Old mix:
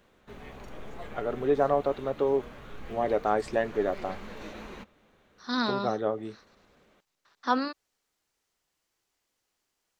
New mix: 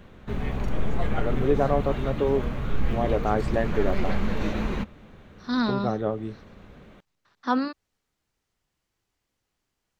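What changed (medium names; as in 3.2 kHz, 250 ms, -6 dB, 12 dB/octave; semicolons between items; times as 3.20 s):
background +10.0 dB; master: add tone controls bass +11 dB, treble -4 dB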